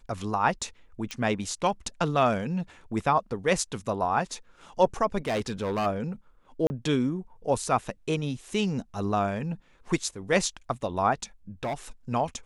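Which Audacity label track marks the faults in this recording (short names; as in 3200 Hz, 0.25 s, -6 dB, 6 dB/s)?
1.110000	1.110000	pop -19 dBFS
5.180000	5.870000	clipped -24 dBFS
6.670000	6.700000	gap 30 ms
11.630000	11.740000	clipped -26.5 dBFS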